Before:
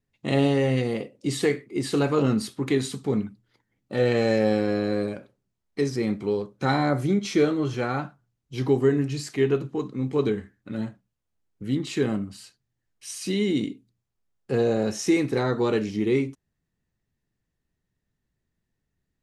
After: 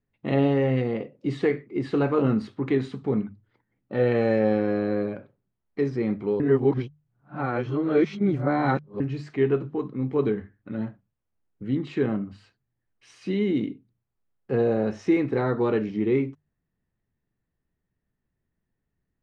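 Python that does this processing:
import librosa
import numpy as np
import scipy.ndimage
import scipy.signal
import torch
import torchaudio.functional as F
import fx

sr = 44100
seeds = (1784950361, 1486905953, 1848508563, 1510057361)

y = fx.edit(x, sr, fx.reverse_span(start_s=6.4, length_s=2.6), tone=tone)
y = scipy.signal.sosfilt(scipy.signal.butter(2, 2100.0, 'lowpass', fs=sr, output='sos'), y)
y = fx.hum_notches(y, sr, base_hz=50, count=3)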